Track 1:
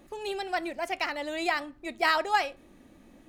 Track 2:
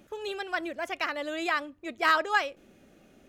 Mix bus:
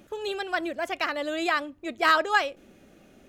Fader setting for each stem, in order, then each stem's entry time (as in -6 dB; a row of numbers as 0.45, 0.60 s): -13.5, +3.0 dB; 0.00, 0.00 s